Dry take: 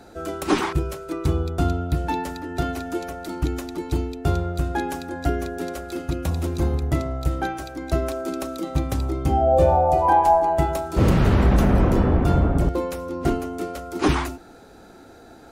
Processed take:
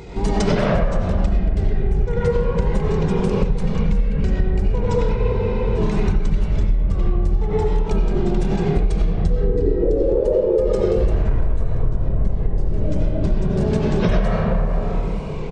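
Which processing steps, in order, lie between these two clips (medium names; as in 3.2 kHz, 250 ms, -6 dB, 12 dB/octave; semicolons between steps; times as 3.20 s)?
pitch shift -9.5 st; peak limiter -14 dBFS, peak gain reduction 7.5 dB; bass shelf 140 Hz +5 dB; comb 1.9 ms, depth 54%; wow and flutter 140 cents; reverberation RT60 1.9 s, pre-delay 50 ms, DRR -7 dB; compression 16:1, threshold -22 dBFS, peak gain reduction 25.5 dB; spectral freeze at 5.17 s, 0.59 s; trim +8.5 dB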